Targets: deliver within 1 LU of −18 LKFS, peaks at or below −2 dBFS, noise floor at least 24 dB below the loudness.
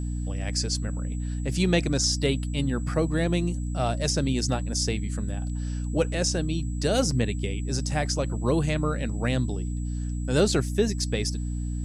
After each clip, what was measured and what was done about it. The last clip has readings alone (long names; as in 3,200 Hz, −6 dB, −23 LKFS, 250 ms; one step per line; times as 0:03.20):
mains hum 60 Hz; hum harmonics up to 300 Hz; level of the hum −27 dBFS; interfering tone 7,800 Hz; level of the tone −48 dBFS; integrated loudness −27.0 LKFS; sample peak −10.0 dBFS; target loudness −18.0 LKFS
→ hum removal 60 Hz, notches 5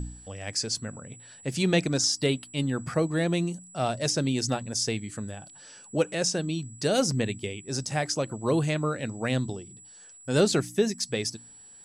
mains hum none found; interfering tone 7,800 Hz; level of the tone −48 dBFS
→ notch filter 7,800 Hz, Q 30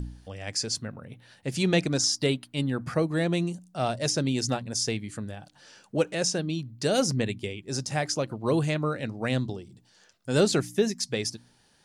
interfering tone none found; integrated loudness −28.0 LKFS; sample peak −10.5 dBFS; target loudness −18.0 LKFS
→ level +10 dB
brickwall limiter −2 dBFS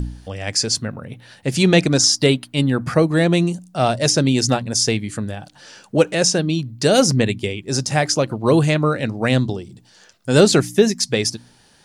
integrated loudness −18.0 LKFS; sample peak −2.0 dBFS; background noise floor −53 dBFS